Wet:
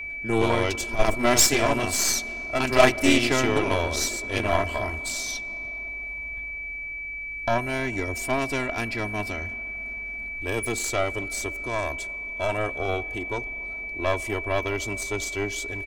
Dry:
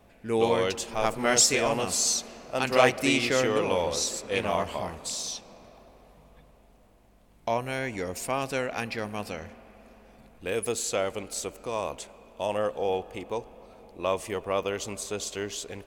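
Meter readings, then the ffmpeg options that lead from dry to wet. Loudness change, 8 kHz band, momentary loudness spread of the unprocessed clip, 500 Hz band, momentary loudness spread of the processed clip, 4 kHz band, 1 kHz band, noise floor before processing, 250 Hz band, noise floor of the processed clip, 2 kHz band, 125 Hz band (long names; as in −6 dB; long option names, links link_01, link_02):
+2.5 dB, +1.5 dB, 13 LU, +1.5 dB, 12 LU, +2.0 dB, +2.5 dB, −57 dBFS, +5.0 dB, −34 dBFS, +7.5 dB, +7.0 dB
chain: -af "lowshelf=frequency=170:gain=11,aecho=1:1:3:0.81,aeval=exprs='0.708*(cos(1*acos(clip(val(0)/0.708,-1,1)))-cos(1*PI/2))+0.0631*(cos(3*acos(clip(val(0)/0.708,-1,1)))-cos(3*PI/2))+0.0562*(cos(8*acos(clip(val(0)/0.708,-1,1)))-cos(8*PI/2))':channel_layout=same,aeval=exprs='val(0)+0.0224*sin(2*PI*2300*n/s)':channel_layout=same,volume=1.5dB"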